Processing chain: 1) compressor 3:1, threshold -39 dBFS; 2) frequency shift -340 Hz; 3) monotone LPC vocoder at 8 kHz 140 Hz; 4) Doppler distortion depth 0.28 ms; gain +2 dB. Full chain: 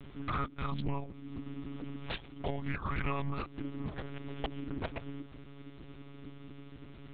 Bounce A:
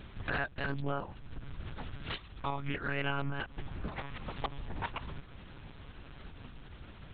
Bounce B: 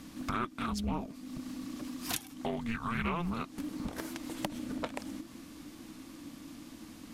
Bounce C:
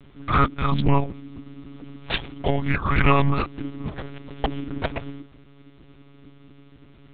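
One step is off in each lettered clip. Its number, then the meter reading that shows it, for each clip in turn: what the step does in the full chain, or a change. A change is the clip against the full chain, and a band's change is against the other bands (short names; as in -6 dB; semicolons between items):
2, 2 kHz band +5.5 dB; 3, 125 Hz band -5.5 dB; 1, mean gain reduction 7.0 dB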